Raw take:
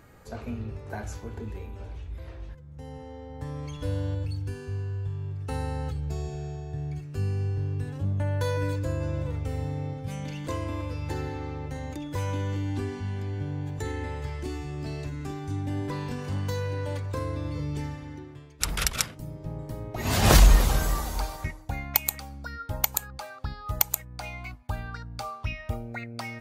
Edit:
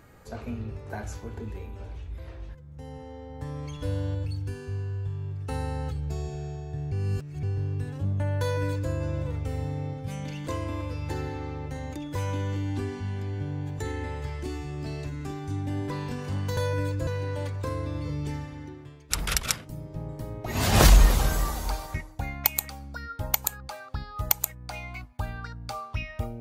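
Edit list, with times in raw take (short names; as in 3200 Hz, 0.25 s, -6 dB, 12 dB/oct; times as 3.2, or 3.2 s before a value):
6.92–7.43 reverse
8.41–8.91 copy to 16.57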